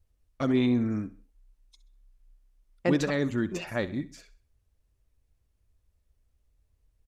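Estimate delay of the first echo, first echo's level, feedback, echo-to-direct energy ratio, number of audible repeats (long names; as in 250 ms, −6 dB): 65 ms, −16.5 dB, 36%, −16.0 dB, 3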